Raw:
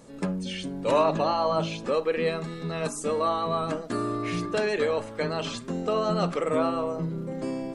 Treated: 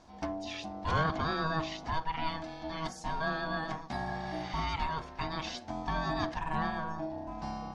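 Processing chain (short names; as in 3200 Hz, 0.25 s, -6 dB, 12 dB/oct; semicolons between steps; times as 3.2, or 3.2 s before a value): spectral repair 4.08–4.58, 930–9100 Hz both; resonant high shelf 6700 Hz -8 dB, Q 3; ring modulator 480 Hz; gain -4.5 dB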